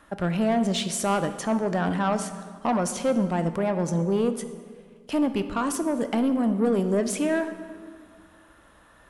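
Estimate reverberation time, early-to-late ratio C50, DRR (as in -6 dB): 1.8 s, 10.5 dB, 9.5 dB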